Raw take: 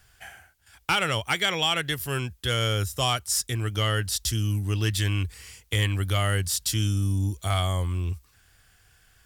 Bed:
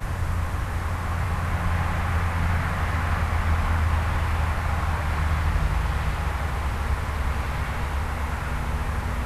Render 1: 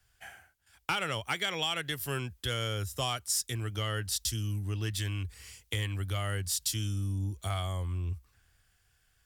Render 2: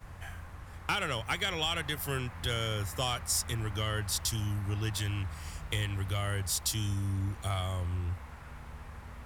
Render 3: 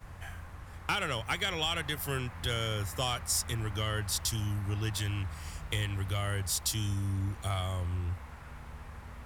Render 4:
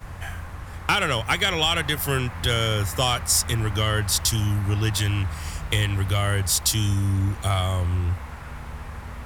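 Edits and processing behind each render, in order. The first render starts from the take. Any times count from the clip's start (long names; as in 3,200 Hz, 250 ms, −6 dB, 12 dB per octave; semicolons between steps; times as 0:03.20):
downward compressor 2.5 to 1, threshold −33 dBFS, peak gain reduction 9.5 dB; multiband upward and downward expander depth 40%
mix in bed −19 dB
no processing that can be heard
level +10 dB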